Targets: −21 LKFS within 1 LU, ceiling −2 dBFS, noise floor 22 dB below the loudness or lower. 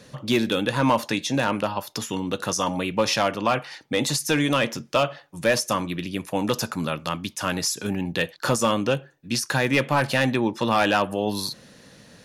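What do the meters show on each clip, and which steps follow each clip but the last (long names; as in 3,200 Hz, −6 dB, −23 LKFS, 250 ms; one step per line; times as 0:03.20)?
share of clipped samples 0.4%; peaks flattened at −12.0 dBFS; integrated loudness −24.0 LKFS; sample peak −12.0 dBFS; target loudness −21.0 LKFS
→ clipped peaks rebuilt −12 dBFS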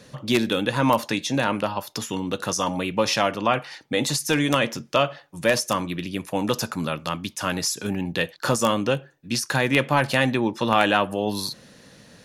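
share of clipped samples 0.0%; integrated loudness −24.0 LKFS; sample peak −3.0 dBFS; target loudness −21.0 LKFS
→ level +3 dB
brickwall limiter −2 dBFS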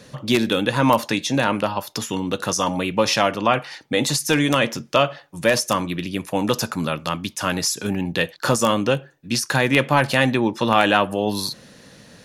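integrated loudness −21.0 LKFS; sample peak −2.0 dBFS; background noise floor −48 dBFS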